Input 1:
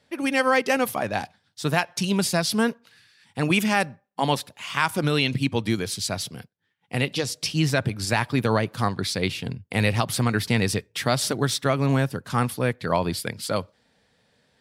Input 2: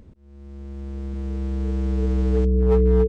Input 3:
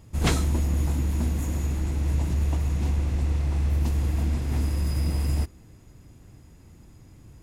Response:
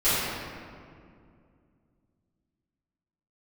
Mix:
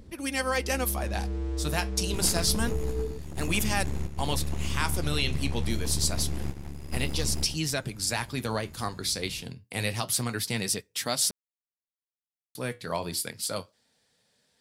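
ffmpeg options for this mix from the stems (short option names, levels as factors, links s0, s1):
-filter_complex "[0:a]bass=f=250:g=-2,treble=f=4000:g=12,flanger=delay=3.8:depth=9.8:regen=-66:speed=0.27:shape=sinusoidal,volume=0.631,asplit=3[s0][s1][s2];[s0]atrim=end=11.31,asetpts=PTS-STARTPTS,afade=t=out:st=11.306:d=0.004:c=hsin[s3];[s1]atrim=start=11.31:end=12.55,asetpts=PTS-STARTPTS,volume=0[s4];[s2]atrim=start=12.55,asetpts=PTS-STARTPTS,afade=t=in:d=0.004:c=hsin[s5];[s3][s4][s5]concat=n=3:v=0:a=1,asplit=2[s6][s7];[1:a]bandreject=f=50:t=h:w=6,bandreject=f=100:t=h:w=6,bandreject=f=150:t=h:w=6,bandreject=f=200:t=h:w=6,acompressor=threshold=0.0562:ratio=6,volume=0.398,asplit=2[s8][s9];[s9]volume=0.631[s10];[2:a]acompressor=threshold=0.0447:ratio=6,aeval=exprs='0.119*(cos(1*acos(clip(val(0)/0.119,-1,1)))-cos(1*PI/2))+0.0596*(cos(4*acos(clip(val(0)/0.119,-1,1)))-cos(4*PI/2))':c=same,adelay=2000,volume=0.501,asplit=2[s11][s12];[s12]volume=0.447[s13];[s7]apad=whole_len=415567[s14];[s11][s14]sidechaingate=range=0.0224:threshold=0.00158:ratio=16:detection=peak[s15];[s8][s15]amix=inputs=2:normalize=0,acontrast=73,alimiter=limit=0.0944:level=0:latency=1:release=273,volume=1[s16];[s10][s13]amix=inputs=2:normalize=0,aecho=0:1:114:1[s17];[s6][s16][s17]amix=inputs=3:normalize=0"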